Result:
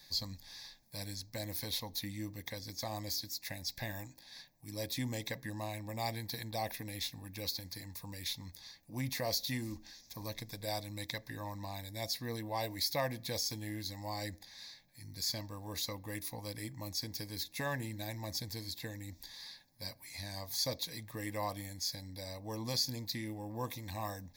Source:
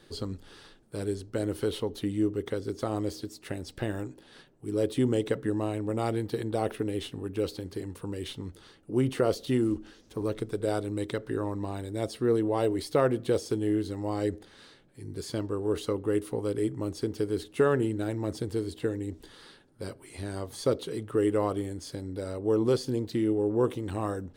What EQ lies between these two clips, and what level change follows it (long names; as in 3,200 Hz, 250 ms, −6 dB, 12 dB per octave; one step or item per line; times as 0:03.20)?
Butterworth band-reject 1,400 Hz, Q 4.9
first-order pre-emphasis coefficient 0.9
phaser with its sweep stopped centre 2,000 Hz, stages 8
+12.5 dB